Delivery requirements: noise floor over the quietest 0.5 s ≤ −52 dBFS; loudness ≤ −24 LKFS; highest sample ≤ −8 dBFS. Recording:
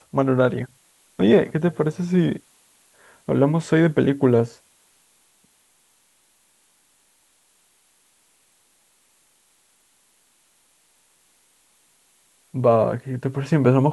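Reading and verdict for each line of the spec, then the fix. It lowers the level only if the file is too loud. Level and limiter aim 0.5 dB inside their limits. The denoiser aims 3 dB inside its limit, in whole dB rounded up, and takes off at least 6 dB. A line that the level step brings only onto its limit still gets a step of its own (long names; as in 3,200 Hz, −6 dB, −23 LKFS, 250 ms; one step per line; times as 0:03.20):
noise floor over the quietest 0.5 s −62 dBFS: in spec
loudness −20.5 LKFS: out of spec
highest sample −3.5 dBFS: out of spec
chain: level −4 dB
brickwall limiter −8.5 dBFS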